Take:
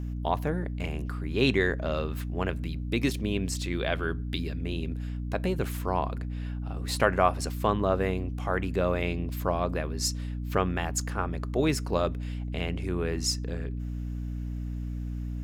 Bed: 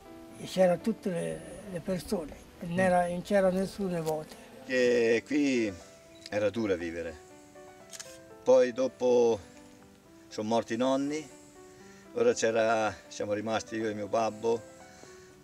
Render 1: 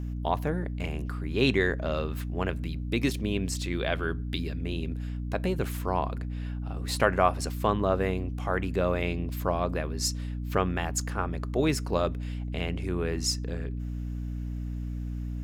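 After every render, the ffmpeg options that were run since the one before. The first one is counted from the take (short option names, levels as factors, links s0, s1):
-af anull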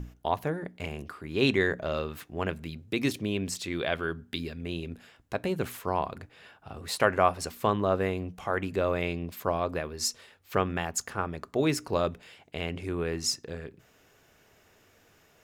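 -af "bandreject=f=60:t=h:w=6,bandreject=f=120:t=h:w=6,bandreject=f=180:t=h:w=6,bandreject=f=240:t=h:w=6,bandreject=f=300:t=h:w=6"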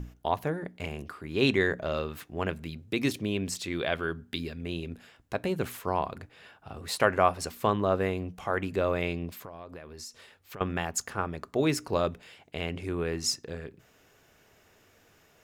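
-filter_complex "[0:a]asettb=1/sr,asplit=3[s0][s1][s2];[s0]atrim=end=9.304[s3];[s1]atrim=start=9.3:end=10.61,asetpts=PTS-STARTPTS,afade=t=in:d=0.004:c=qsin,afade=t=out:st=1.306:d=0.004:c=qsin,acompressor=threshold=0.00891:ratio=5:attack=3.2:release=140:knee=1:detection=peak[s4];[s2]atrim=start=10.606[s5];[s3][s4]acrossfade=d=0.004:c1=hsin:c2=qsin[s6];[s6][s5]acrossfade=d=0.004:c1=qsin:c2=hsin"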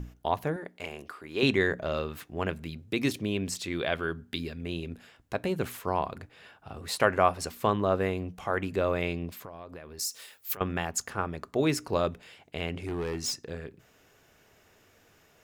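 -filter_complex "[0:a]asettb=1/sr,asplit=3[s0][s1][s2];[s0]atrim=end=0.564[s3];[s1]atrim=start=0.56:end=1.43,asetpts=PTS-STARTPTS,afade=t=in:d=0.004:c=qsin,afade=t=out:st=0.866:d=0.004:c=qsin,bass=f=250:g=-12,treble=f=4000:g=0[s4];[s2]atrim=start=1.426[s5];[s3][s4]acrossfade=d=0.004:c1=hsin:c2=qsin[s6];[s6][s5]acrossfade=d=0.004:c1=qsin:c2=hsin,asettb=1/sr,asplit=3[s7][s8][s9];[s7]atrim=end=9.994[s10];[s8]atrim=start=9.99:end=10.57,asetpts=PTS-STARTPTS,afade=t=in:d=0.004:c=qsin,afade=t=out:st=0.576:d=0.004:c=qsin,aemphasis=mode=production:type=riaa[s11];[s9]atrim=start=10.566[s12];[s10][s11]acrossfade=d=0.004:c1=hsin:c2=qsin[s13];[s13][s12]acrossfade=d=0.004:c1=qsin:c2=hsin,asettb=1/sr,asplit=3[s14][s15][s16];[s14]atrim=end=12.744[s17];[s15]atrim=start=12.74:end=13.44,asetpts=PTS-STARTPTS,afade=t=in:d=0.004:c=qsin,afade=t=out:st=0.696:d=0.004:c=qsin,asoftclip=type=hard:threshold=0.0398[s18];[s16]atrim=start=13.436[s19];[s17][s18]acrossfade=d=0.004:c1=hsin:c2=qsin[s20];[s20][s19]acrossfade=d=0.004:c1=qsin:c2=hsin"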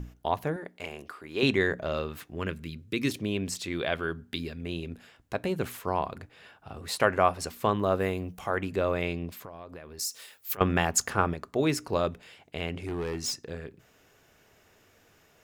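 -filter_complex "[0:a]asettb=1/sr,asplit=3[s0][s1][s2];[s0]atrim=end=2.354[s3];[s1]atrim=start=2.35:end=3.1,asetpts=PTS-STARTPTS,afade=t=in:d=0.004:c=qsin,afade=t=out:st=0.746:d=0.004:c=qsin,equalizer=f=740:t=o:w=0.56:g=-14[s4];[s2]atrim=start=3.096[s5];[s3][s4]acrossfade=d=0.004:c1=hsin:c2=qsin[s6];[s6][s5]acrossfade=d=0.004:c1=qsin:c2=hsin,asettb=1/sr,asplit=3[s7][s8][s9];[s7]atrim=end=7.764[s10];[s8]atrim=start=7.76:end=8.5,asetpts=PTS-STARTPTS,afade=t=in:d=0.004:c=qsin,afade=t=out:st=0.736:d=0.004:c=qsin,highshelf=f=9900:g=12[s11];[s9]atrim=start=8.496[s12];[s10][s11]acrossfade=d=0.004:c1=hsin:c2=qsin[s13];[s13][s12]acrossfade=d=0.004:c1=qsin:c2=hsin,asettb=1/sr,asplit=3[s14][s15][s16];[s14]atrim=end=10.584[s17];[s15]atrim=start=10.58:end=11.34,asetpts=PTS-STARTPTS,afade=t=in:d=0.004:c=qsin,afade=t=out:st=0.756:d=0.004:c=qsin,acontrast=55[s18];[s16]atrim=start=11.336[s19];[s17][s18]acrossfade=d=0.004:c1=hsin:c2=qsin[s20];[s20][s19]acrossfade=d=0.004:c1=qsin:c2=hsin"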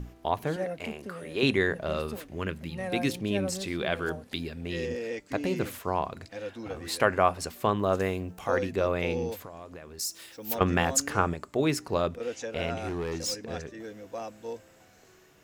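-filter_complex "[1:a]volume=0.355[s0];[0:a][s0]amix=inputs=2:normalize=0"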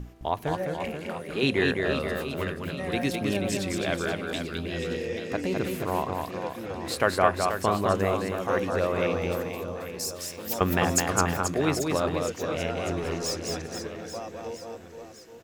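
-af "aecho=1:1:210|483|837.9|1299|1899:0.631|0.398|0.251|0.158|0.1"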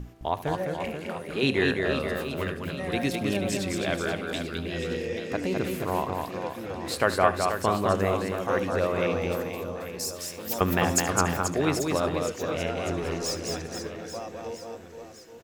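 -af "aecho=1:1:74:0.15"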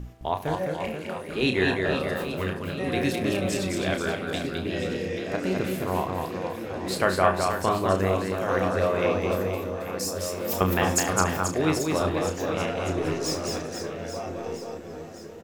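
-filter_complex "[0:a]asplit=2[s0][s1];[s1]adelay=32,volume=0.447[s2];[s0][s2]amix=inputs=2:normalize=0,asplit=2[s3][s4];[s4]adelay=1399,volume=0.447,highshelf=f=4000:g=-31.5[s5];[s3][s5]amix=inputs=2:normalize=0"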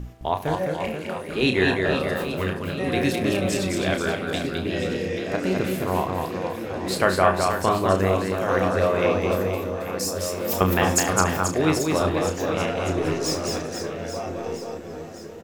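-af "volume=1.41,alimiter=limit=0.708:level=0:latency=1"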